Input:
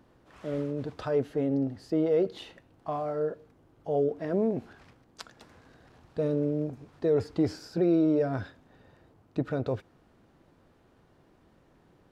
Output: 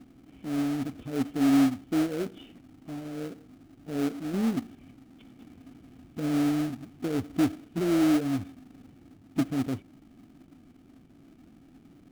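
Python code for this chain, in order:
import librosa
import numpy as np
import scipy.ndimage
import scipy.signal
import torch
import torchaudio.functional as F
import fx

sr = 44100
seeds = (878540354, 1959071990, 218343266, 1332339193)

p1 = fx.law_mismatch(x, sr, coded='mu')
p2 = fx.formant_cascade(p1, sr, vowel='i')
p3 = fx.sample_hold(p2, sr, seeds[0], rate_hz=1000.0, jitter_pct=20)
p4 = p2 + (p3 * 10.0 ** (-5.0 / 20.0))
y = p4 * 10.0 ** (4.5 / 20.0)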